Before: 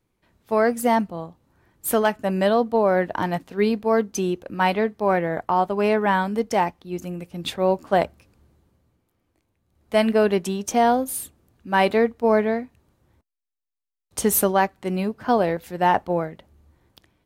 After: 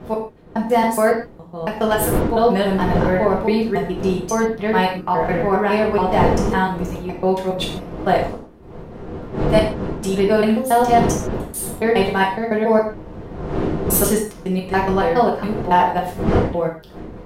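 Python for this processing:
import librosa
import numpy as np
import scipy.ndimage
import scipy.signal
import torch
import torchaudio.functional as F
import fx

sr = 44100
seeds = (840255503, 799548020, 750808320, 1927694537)

y = fx.block_reorder(x, sr, ms=139.0, group=4)
y = fx.dmg_wind(y, sr, seeds[0], corner_hz=380.0, level_db=-29.0)
y = fx.rev_gated(y, sr, seeds[1], gate_ms=170, shape='falling', drr_db=-2.5)
y = y * librosa.db_to_amplitude(-1.0)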